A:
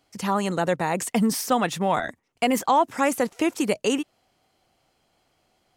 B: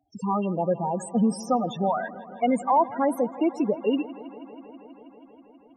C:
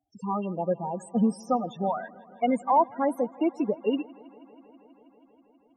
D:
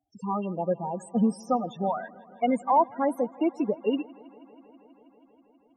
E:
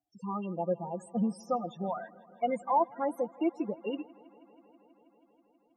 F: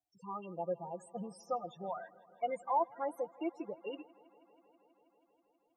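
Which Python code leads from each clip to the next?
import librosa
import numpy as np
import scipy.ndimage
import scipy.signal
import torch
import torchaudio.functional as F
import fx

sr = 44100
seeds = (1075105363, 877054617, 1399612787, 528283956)

y1 = fx.spec_topn(x, sr, count=8)
y1 = fx.echo_bbd(y1, sr, ms=161, stages=4096, feedback_pct=83, wet_db=-19.0)
y2 = fx.upward_expand(y1, sr, threshold_db=-34.0, expansion=1.5)
y3 = y2
y4 = fx.low_shelf(y3, sr, hz=77.0, db=-9.0)
y4 = y4 + 0.48 * np.pad(y4, (int(5.8 * sr / 1000.0), 0))[:len(y4)]
y4 = y4 * 10.0 ** (-6.0 / 20.0)
y5 = fx.peak_eq(y4, sr, hz=230.0, db=-13.5, octaves=0.64)
y5 = y5 * 10.0 ** (-4.5 / 20.0)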